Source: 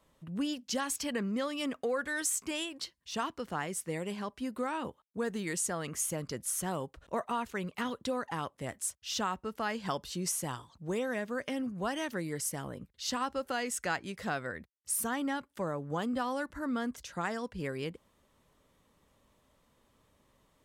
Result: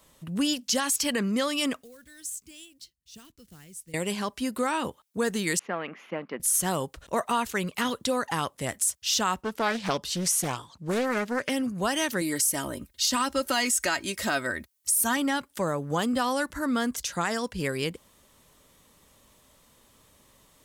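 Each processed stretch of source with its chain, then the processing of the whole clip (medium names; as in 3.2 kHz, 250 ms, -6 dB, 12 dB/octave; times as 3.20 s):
1.83–3.94 s: block-companded coder 5-bit + amplifier tone stack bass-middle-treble 10-0-1
5.59–6.40 s: companding laws mixed up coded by A + elliptic band-pass 200–2500 Hz, stop band 50 dB
9.41–11.49 s: high-pass 94 Hz 6 dB/octave + treble shelf 5.8 kHz -7 dB + loudspeaker Doppler distortion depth 0.49 ms
12.21–15.17 s: treble shelf 9.1 kHz +5 dB + comb 3.2 ms, depth 57%
whole clip: treble shelf 3.4 kHz +11.5 dB; peak limiter -21.5 dBFS; trim +6.5 dB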